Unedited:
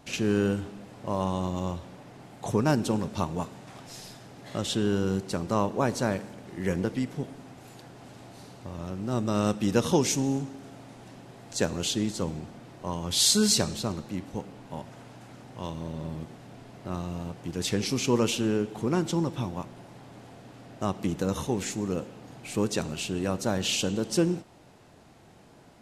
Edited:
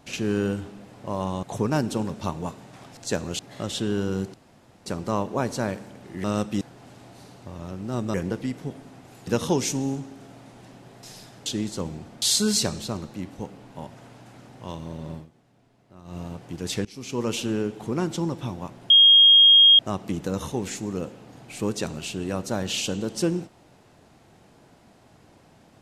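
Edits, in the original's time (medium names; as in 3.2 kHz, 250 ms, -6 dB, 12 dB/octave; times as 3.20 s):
1.43–2.37 s: delete
3.91–4.34 s: swap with 11.46–11.88 s
5.29 s: insert room tone 0.52 s
6.67–7.80 s: swap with 9.33–9.70 s
12.64–13.17 s: delete
16.09–17.12 s: dip -15 dB, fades 0.13 s
17.80–18.36 s: fade in, from -23.5 dB
19.85–20.74 s: bleep 3.25 kHz -10 dBFS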